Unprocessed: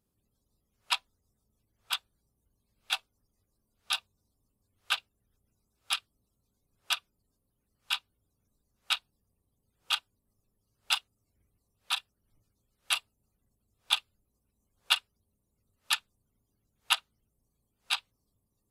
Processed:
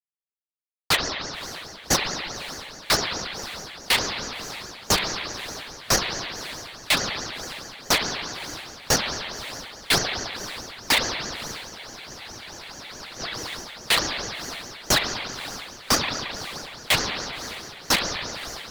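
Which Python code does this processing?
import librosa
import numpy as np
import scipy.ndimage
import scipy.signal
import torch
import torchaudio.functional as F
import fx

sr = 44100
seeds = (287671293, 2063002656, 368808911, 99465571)

p1 = scipy.signal.sosfilt(scipy.signal.cheby2(4, 50, [210.0, 710.0], 'bandstop', fs=sr, output='sos'), x)
p2 = fx.env_lowpass_down(p1, sr, base_hz=2400.0, full_db=-28.0)
p3 = scipy.signal.sosfilt(scipy.signal.butter(2, 4400.0, 'lowpass', fs=sr, output='sos'), p2)
p4 = fx.small_body(p3, sr, hz=(230.0, 330.0, 1100.0, 1800.0), ring_ms=45, db=8)
p5 = fx.fuzz(p4, sr, gain_db=44.0, gate_db=-53.0)
p6 = p5 + fx.echo_diffused(p5, sr, ms=576, feedback_pct=50, wet_db=-14.5, dry=0)
p7 = fx.rev_spring(p6, sr, rt60_s=2.5, pass_ms=(33,), chirp_ms=45, drr_db=1.0)
p8 = fx.spec_freeze(p7, sr, seeds[0], at_s=11.72, hold_s=1.47)
y = fx.ring_lfo(p8, sr, carrier_hz=1900.0, swing_pct=70, hz=4.7)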